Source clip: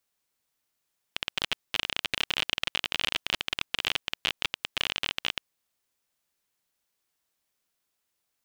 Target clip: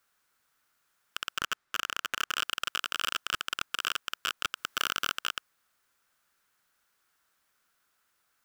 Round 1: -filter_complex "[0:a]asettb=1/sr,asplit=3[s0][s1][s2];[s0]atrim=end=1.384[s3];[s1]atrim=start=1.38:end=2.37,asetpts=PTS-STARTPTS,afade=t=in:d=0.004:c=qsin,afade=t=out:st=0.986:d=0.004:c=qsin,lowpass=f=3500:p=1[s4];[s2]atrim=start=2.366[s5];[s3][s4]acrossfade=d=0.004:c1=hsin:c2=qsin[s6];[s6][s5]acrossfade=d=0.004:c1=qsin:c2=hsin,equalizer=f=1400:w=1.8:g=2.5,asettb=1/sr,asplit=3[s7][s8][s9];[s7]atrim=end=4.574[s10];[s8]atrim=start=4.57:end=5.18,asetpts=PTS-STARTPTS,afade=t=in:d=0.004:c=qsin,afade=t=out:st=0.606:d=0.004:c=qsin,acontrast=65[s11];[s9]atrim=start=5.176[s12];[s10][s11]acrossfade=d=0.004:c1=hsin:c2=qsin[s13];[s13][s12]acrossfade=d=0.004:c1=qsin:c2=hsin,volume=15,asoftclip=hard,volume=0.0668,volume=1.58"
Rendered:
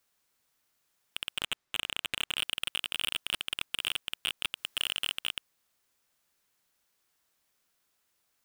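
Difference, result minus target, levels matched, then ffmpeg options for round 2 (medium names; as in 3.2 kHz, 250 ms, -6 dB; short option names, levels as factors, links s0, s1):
1 kHz band -10.5 dB
-filter_complex "[0:a]asettb=1/sr,asplit=3[s0][s1][s2];[s0]atrim=end=1.384[s3];[s1]atrim=start=1.38:end=2.37,asetpts=PTS-STARTPTS,afade=t=in:d=0.004:c=qsin,afade=t=out:st=0.986:d=0.004:c=qsin,lowpass=f=3500:p=1[s4];[s2]atrim=start=2.366[s5];[s3][s4]acrossfade=d=0.004:c1=hsin:c2=qsin[s6];[s6][s5]acrossfade=d=0.004:c1=qsin:c2=hsin,equalizer=f=1400:w=1.8:g=12.5,asettb=1/sr,asplit=3[s7][s8][s9];[s7]atrim=end=4.574[s10];[s8]atrim=start=4.57:end=5.18,asetpts=PTS-STARTPTS,afade=t=in:d=0.004:c=qsin,afade=t=out:st=0.606:d=0.004:c=qsin,acontrast=65[s11];[s9]atrim=start=5.176[s12];[s10][s11]acrossfade=d=0.004:c1=hsin:c2=qsin[s13];[s13][s12]acrossfade=d=0.004:c1=qsin:c2=hsin,volume=15,asoftclip=hard,volume=0.0668,volume=1.58"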